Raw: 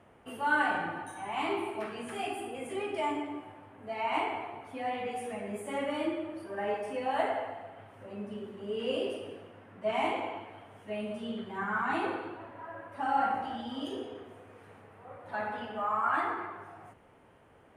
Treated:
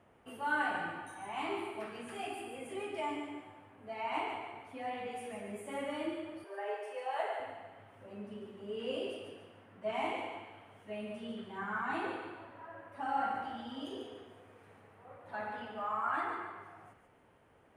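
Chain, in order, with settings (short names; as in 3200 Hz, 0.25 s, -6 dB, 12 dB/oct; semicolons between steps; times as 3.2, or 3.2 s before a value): 6.44–7.4 elliptic high-pass 380 Hz, stop band 50 dB; thin delay 0.143 s, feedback 36%, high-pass 1400 Hz, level -6 dB; gain -5.5 dB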